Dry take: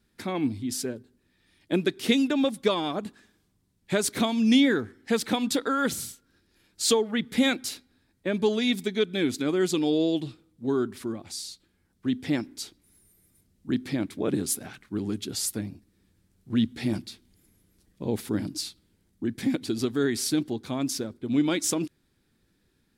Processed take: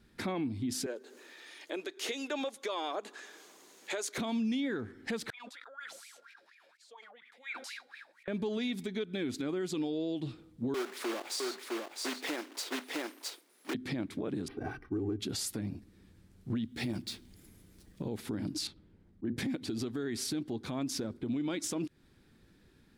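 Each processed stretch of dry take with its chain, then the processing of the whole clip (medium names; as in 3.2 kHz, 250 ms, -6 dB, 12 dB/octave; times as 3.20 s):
0.86–4.18 s: high-pass 410 Hz 24 dB/octave + upward compressor, threshold -45 dBFS + peaking EQ 6.6 kHz +9.5 dB 0.23 oct
5.30–8.28 s: differentiator + wah-wah 4.2 Hz 530–2400 Hz, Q 12 + decay stretcher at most 24 dB/s
10.74–13.75 s: block-companded coder 3-bit + high-pass 380 Hz 24 dB/octave + delay 659 ms -5.5 dB
14.48–15.20 s: tape spacing loss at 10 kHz 40 dB + comb 2.6 ms, depth 74% + decimation joined by straight lines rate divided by 6×
16.63–18.17 s: median filter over 3 samples + treble shelf 7 kHz +10.5 dB
18.67–19.37 s: low-pass 1.1 kHz 6 dB/octave + slow attack 101 ms + hum notches 60/120/180/240/300/360/420/480/540 Hz
whole clip: treble shelf 5.4 kHz -8.5 dB; compression 6:1, threshold -36 dBFS; peak limiter -33 dBFS; trim +6.5 dB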